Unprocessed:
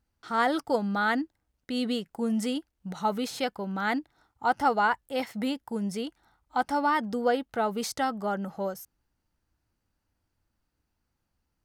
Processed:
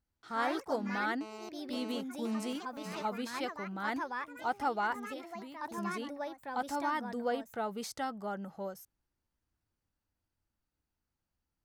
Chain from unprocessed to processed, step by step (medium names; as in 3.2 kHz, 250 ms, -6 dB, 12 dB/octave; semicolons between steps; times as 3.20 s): 4.99–5.78 s: compression 6:1, threshold -38 dBFS, peak gain reduction 12.5 dB; ever faster or slower copies 96 ms, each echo +3 st, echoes 3, each echo -6 dB; 1.21–3.05 s: mobile phone buzz -38 dBFS; trim -8.5 dB